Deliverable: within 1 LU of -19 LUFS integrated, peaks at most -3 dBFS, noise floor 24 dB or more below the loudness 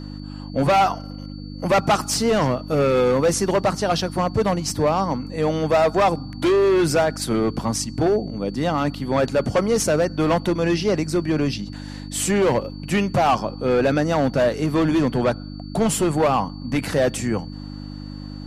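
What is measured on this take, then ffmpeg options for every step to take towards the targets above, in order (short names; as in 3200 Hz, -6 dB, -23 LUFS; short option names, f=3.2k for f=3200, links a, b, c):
hum 50 Hz; harmonics up to 300 Hz; hum level -31 dBFS; steady tone 4500 Hz; tone level -46 dBFS; loudness -21.0 LUFS; peak -9.5 dBFS; loudness target -19.0 LUFS
-> -af "bandreject=f=50:t=h:w=4,bandreject=f=100:t=h:w=4,bandreject=f=150:t=h:w=4,bandreject=f=200:t=h:w=4,bandreject=f=250:t=h:w=4,bandreject=f=300:t=h:w=4"
-af "bandreject=f=4.5k:w=30"
-af "volume=2dB"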